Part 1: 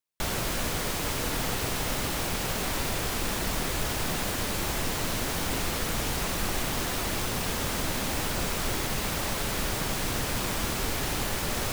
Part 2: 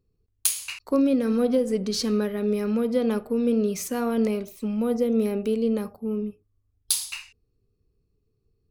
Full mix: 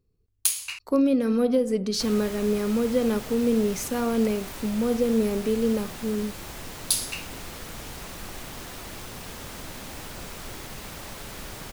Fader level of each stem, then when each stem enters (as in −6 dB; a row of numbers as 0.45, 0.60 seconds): −9.0, 0.0 decibels; 1.80, 0.00 seconds